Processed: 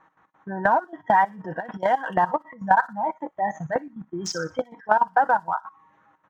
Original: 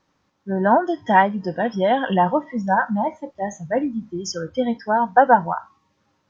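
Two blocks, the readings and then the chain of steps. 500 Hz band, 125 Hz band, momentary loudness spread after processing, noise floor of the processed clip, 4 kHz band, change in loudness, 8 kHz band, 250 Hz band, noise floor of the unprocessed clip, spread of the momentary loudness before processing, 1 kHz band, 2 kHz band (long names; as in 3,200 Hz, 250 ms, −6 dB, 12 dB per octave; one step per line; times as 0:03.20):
−6.0 dB, −8.0 dB, 12 LU, −66 dBFS, −4.5 dB, −3.5 dB, can't be measured, −11.0 dB, −69 dBFS, 12 LU, −2.5 dB, −2.0 dB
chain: adaptive Wiener filter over 9 samples
output level in coarse steps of 18 dB
low-shelf EQ 120 Hz −10.5 dB
comb filter 6.3 ms, depth 34%
gate pattern "x.x.xxxxx" 178 BPM −12 dB
downward compressor 12 to 1, threshold −30 dBFS, peak gain reduction 16 dB
flat-topped bell 1,200 Hz +9.5 dB
on a send: delay with a high-pass on its return 61 ms, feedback 37%, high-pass 5,200 Hz, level −7.5 dB
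on the sum: level +7 dB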